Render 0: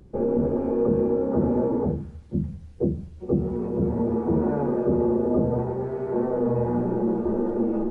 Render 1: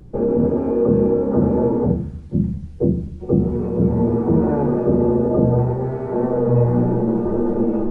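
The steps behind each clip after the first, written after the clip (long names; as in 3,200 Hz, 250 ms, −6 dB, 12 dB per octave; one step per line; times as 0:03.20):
low-shelf EQ 150 Hz +5 dB
on a send at −8 dB: convolution reverb RT60 0.50 s, pre-delay 7 ms
on the sum: level +4 dB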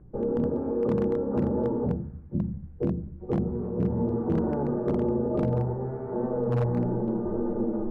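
low-pass filter 1,700 Hz 24 dB per octave
wave folding −8.5 dBFS
level −9 dB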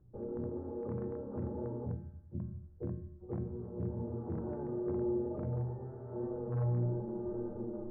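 low-pass filter 1,800 Hz 24 dB per octave
parametric band 88 Hz +15 dB 0.22 octaves
tuned comb filter 120 Hz, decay 0.8 s, harmonics odd, mix 80%
level −1.5 dB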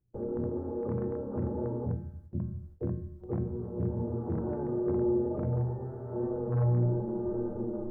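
noise gate with hold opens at −42 dBFS
level +6 dB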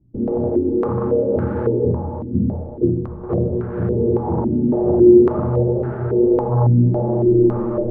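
mu-law and A-law mismatch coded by mu
feedback delay with all-pass diffusion 596 ms, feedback 48%, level −8 dB
low-pass on a step sequencer 3.6 Hz 260–1,500 Hz
level +8.5 dB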